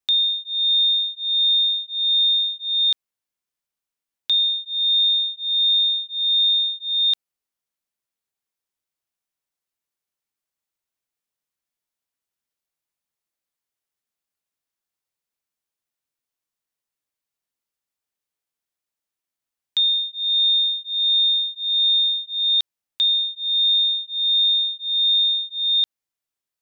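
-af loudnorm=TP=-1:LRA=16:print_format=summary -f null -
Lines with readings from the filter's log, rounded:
Input Integrated:    -17.5 LUFS
Input True Peak:     -14.0 dBTP
Input LRA:             4.3 LU
Input Threshold:     -27.5 LUFS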